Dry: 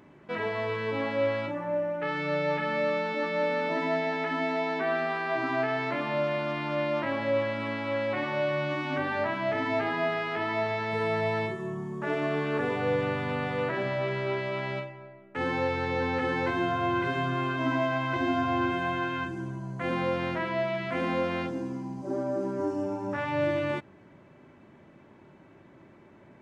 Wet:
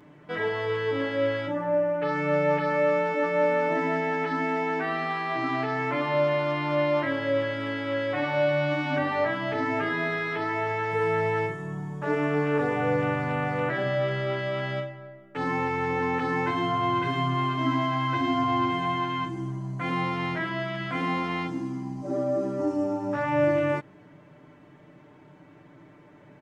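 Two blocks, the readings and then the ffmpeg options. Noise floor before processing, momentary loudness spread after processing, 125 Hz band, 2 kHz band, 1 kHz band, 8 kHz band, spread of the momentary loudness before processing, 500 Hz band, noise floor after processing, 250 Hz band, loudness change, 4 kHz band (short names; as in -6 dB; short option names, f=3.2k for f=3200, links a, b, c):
-55 dBFS, 6 LU, +4.0 dB, +1.5 dB, +3.5 dB, n/a, 5 LU, +2.5 dB, -53 dBFS, +2.5 dB, +2.5 dB, +2.0 dB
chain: -af "aecho=1:1:6.7:0.83"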